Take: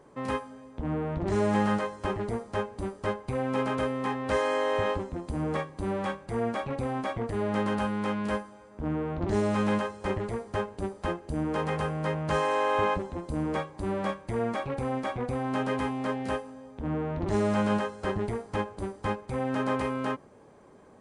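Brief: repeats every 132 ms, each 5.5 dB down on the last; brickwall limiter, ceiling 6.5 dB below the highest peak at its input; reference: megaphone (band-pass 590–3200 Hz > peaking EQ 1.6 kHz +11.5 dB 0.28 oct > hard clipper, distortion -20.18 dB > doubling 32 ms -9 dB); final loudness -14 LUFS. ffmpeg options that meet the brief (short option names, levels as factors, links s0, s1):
-filter_complex "[0:a]alimiter=limit=0.0891:level=0:latency=1,highpass=590,lowpass=3200,equalizer=f=1600:t=o:w=0.28:g=11.5,aecho=1:1:132|264|396|528|660|792|924:0.531|0.281|0.149|0.079|0.0419|0.0222|0.0118,asoftclip=type=hard:threshold=0.0668,asplit=2[s0][s1];[s1]adelay=32,volume=0.355[s2];[s0][s2]amix=inputs=2:normalize=0,volume=7.94"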